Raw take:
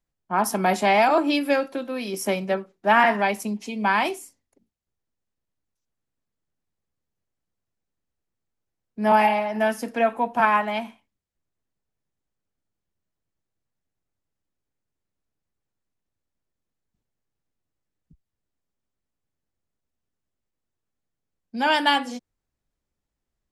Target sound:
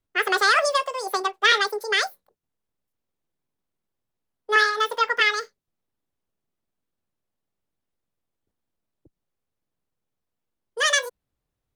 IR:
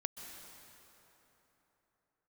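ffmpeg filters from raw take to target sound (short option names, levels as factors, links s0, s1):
-filter_complex "[0:a]acrossover=split=5900[s0][s1];[s1]acompressor=threshold=0.00562:ratio=4:attack=1:release=60[s2];[s0][s2]amix=inputs=2:normalize=0,asetrate=88200,aresample=44100"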